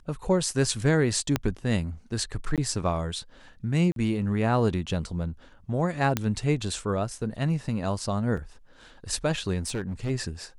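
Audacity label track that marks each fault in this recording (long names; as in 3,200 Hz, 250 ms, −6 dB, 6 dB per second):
1.360000	1.360000	click −9 dBFS
2.560000	2.580000	drop-out 17 ms
3.920000	3.960000	drop-out 42 ms
6.170000	6.170000	click −9 dBFS
8.370000	8.370000	drop-out 4.1 ms
9.660000	10.110000	clipping −25.5 dBFS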